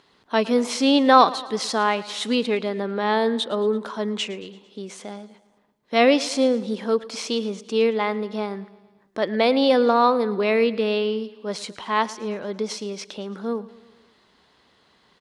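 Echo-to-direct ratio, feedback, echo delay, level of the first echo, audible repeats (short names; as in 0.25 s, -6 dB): -17.5 dB, 58%, 0.112 s, -19.0 dB, 4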